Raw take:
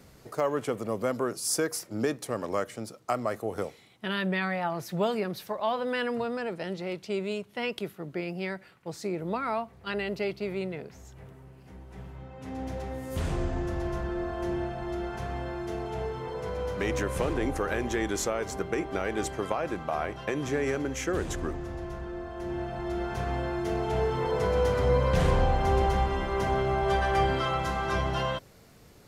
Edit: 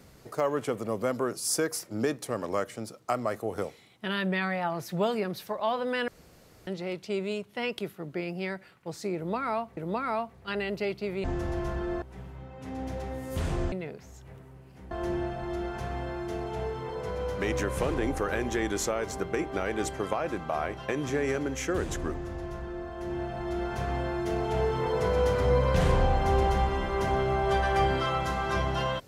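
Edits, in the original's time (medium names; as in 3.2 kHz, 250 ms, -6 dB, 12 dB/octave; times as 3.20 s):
6.08–6.67 s: room tone
9.16–9.77 s: loop, 2 plays
10.63–11.82 s: swap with 13.52–14.30 s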